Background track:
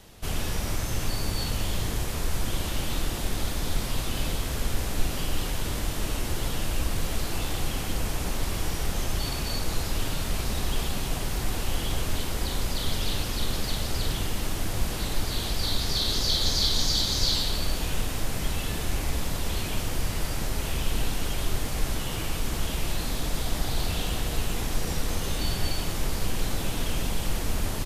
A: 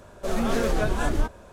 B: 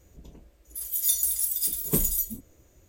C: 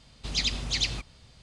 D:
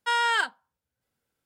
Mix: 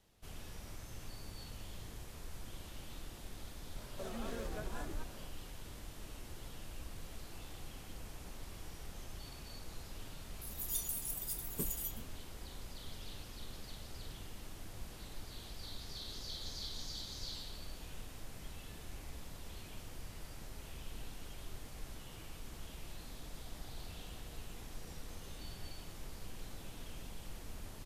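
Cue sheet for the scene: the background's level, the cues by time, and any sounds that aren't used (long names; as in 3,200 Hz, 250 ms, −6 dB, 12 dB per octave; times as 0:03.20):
background track −20 dB
0:03.76: mix in A −8.5 dB + downward compressor 3 to 1, threshold −33 dBFS
0:09.66: mix in B −14.5 dB
not used: C, D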